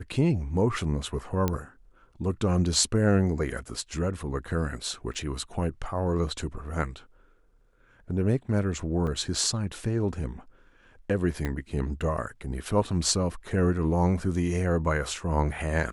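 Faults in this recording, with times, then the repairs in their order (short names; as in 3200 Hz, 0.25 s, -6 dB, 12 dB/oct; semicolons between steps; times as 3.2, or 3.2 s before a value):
1.48 pop -12 dBFS
5.14–5.15 gap 7.1 ms
9.07 gap 3.6 ms
11.45 pop -17 dBFS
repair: de-click; interpolate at 5.14, 7.1 ms; interpolate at 9.07, 3.6 ms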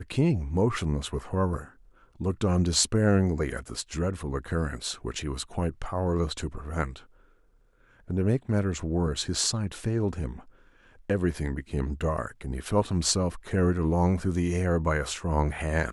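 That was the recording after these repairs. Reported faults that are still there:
11.45 pop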